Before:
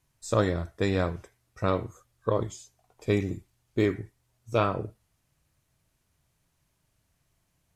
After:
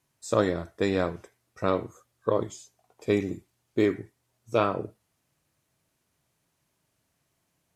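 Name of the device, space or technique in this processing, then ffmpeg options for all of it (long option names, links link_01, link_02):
filter by subtraction: -filter_complex "[0:a]asplit=2[link_01][link_02];[link_02]lowpass=300,volume=-1[link_03];[link_01][link_03]amix=inputs=2:normalize=0"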